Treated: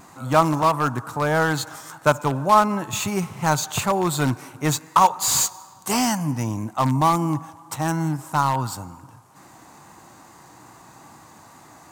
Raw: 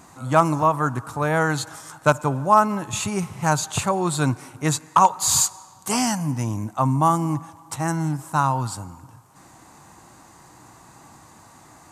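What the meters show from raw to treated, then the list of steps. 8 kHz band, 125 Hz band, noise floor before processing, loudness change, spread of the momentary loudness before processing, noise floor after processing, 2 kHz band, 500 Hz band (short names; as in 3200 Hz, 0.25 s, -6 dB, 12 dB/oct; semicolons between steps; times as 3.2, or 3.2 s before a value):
-1.0 dB, -0.5 dB, -50 dBFS, 0.0 dB, 10 LU, -49 dBFS, +0.5 dB, +0.5 dB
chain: low shelf 71 Hz -11.5 dB; wow and flutter 29 cents; in parallel at -11.5 dB: wrapped overs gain 15 dB; on the sum: decimation joined by straight lines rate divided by 2×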